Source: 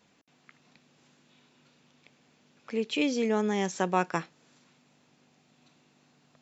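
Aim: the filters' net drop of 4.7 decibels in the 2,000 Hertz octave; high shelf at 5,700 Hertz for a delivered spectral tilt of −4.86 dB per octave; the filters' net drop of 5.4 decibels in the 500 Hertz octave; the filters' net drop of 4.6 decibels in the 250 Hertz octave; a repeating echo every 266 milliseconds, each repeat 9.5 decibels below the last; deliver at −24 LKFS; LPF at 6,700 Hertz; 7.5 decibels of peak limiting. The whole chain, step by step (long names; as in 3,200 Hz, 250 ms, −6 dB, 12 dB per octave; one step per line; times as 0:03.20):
low-pass filter 6,700 Hz
parametric band 250 Hz −4.5 dB
parametric band 500 Hz −5 dB
parametric band 2,000 Hz −5 dB
high-shelf EQ 5,700 Hz −7 dB
brickwall limiter −22.5 dBFS
repeating echo 266 ms, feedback 33%, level −9.5 dB
level +11 dB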